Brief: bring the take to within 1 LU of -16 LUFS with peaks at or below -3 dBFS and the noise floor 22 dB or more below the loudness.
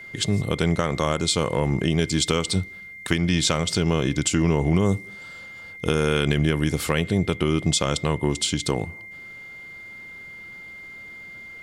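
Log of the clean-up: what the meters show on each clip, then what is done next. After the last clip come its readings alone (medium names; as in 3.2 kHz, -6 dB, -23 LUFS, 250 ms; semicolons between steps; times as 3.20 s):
steady tone 2.1 kHz; tone level -38 dBFS; loudness -23.0 LUFS; peak level -6.5 dBFS; loudness target -16.0 LUFS
-> band-stop 2.1 kHz, Q 30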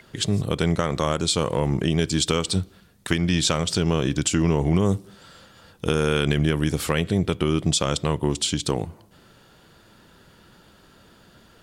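steady tone not found; loudness -23.0 LUFS; peak level -7.0 dBFS; loudness target -16.0 LUFS
-> trim +7 dB; peak limiter -3 dBFS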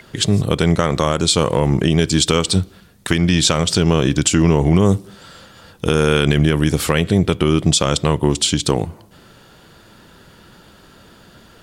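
loudness -16.5 LUFS; peak level -3.0 dBFS; noise floor -47 dBFS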